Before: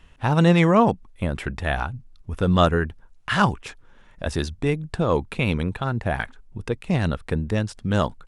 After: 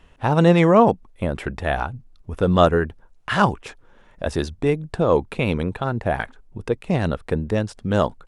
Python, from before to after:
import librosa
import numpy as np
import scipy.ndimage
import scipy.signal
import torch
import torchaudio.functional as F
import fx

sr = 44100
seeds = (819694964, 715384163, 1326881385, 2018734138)

y = fx.peak_eq(x, sr, hz=520.0, db=6.5, octaves=2.1)
y = F.gain(torch.from_numpy(y), -1.5).numpy()